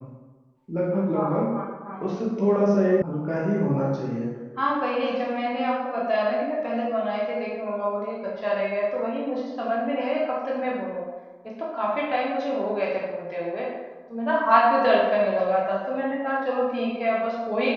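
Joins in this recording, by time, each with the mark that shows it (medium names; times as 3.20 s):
3.02 s: sound stops dead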